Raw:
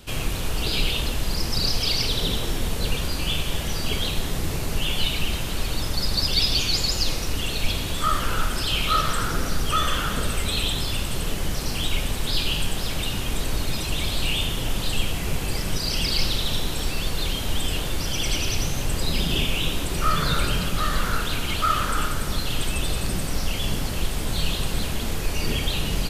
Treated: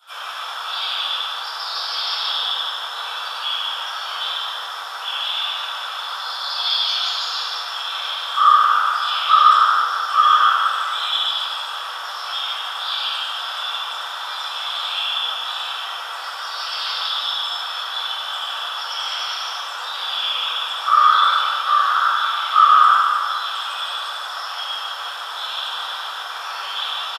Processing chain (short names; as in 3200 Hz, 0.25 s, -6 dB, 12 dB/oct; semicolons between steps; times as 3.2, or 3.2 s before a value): HPF 890 Hz 24 dB/oct; high shelf 3100 Hz +8 dB; echo 0.141 s -6 dB; reverb RT60 1.1 s, pre-delay 3 ms, DRR -14 dB; speed mistake 25 fps video run at 24 fps; gain -15.5 dB